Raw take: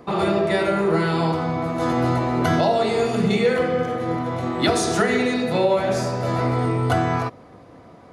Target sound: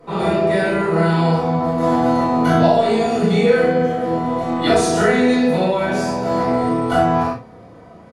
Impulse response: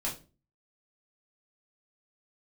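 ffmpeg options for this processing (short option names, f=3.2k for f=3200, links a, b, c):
-filter_complex "[0:a]asplit=2[a][b];[b]adelay=36,volume=-4dB[c];[a][c]amix=inputs=2:normalize=0[d];[1:a]atrim=start_sample=2205,atrim=end_sample=3528,asetrate=32193,aresample=44100[e];[d][e]afir=irnorm=-1:irlink=0,volume=-5dB"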